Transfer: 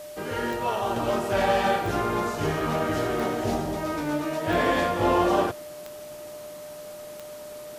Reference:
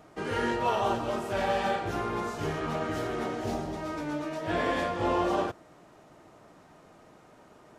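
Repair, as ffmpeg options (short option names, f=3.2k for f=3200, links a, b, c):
-af "adeclick=t=4,bandreject=f=600:w=30,afwtdn=0.004,asetnsamples=n=441:p=0,asendcmd='0.96 volume volume -5.5dB',volume=0dB"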